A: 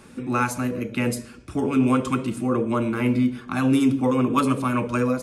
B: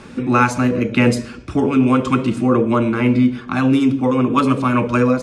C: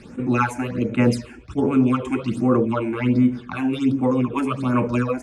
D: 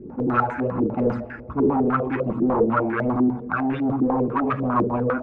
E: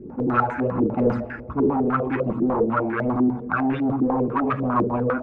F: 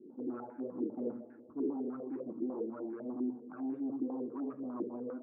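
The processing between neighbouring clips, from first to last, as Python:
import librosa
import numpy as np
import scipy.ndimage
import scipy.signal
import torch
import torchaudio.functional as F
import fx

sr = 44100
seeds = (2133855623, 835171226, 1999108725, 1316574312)

y1 = scipy.signal.sosfilt(scipy.signal.butter(2, 5800.0, 'lowpass', fs=sr, output='sos'), x)
y1 = fx.rider(y1, sr, range_db=4, speed_s=0.5)
y1 = F.gain(torch.from_numpy(y1), 6.5).numpy()
y2 = fx.phaser_stages(y1, sr, stages=8, low_hz=150.0, high_hz=4900.0, hz=1.3, feedback_pct=20)
y2 = fx.attack_slew(y2, sr, db_per_s=440.0)
y2 = F.gain(torch.from_numpy(y2), -3.5).numpy()
y3 = np.clip(y2, -10.0 ** (-22.0 / 20.0), 10.0 ** (-22.0 / 20.0))
y3 = fx.rev_fdn(y3, sr, rt60_s=2.8, lf_ratio=1.0, hf_ratio=0.8, size_ms=42.0, drr_db=13.5)
y3 = fx.filter_held_lowpass(y3, sr, hz=10.0, low_hz=360.0, high_hz=1700.0)
y4 = fx.rider(y3, sr, range_db=4, speed_s=0.5)
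y5 = fx.ladder_bandpass(y4, sr, hz=350.0, resonance_pct=50)
y5 = F.gain(torch.from_numpy(y5), -7.0).numpy()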